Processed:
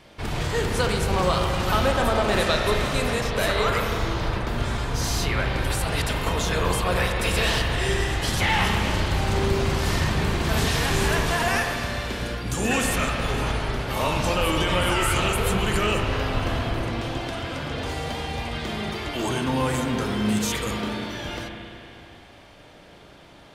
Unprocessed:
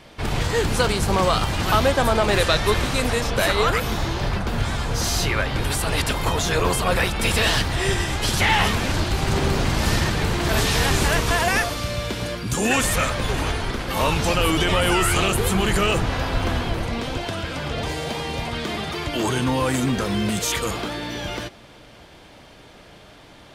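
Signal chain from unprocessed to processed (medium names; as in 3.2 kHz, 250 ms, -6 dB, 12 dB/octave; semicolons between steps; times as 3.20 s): spring tank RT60 2.9 s, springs 33/38 ms, chirp 30 ms, DRR 2 dB; trim -4.5 dB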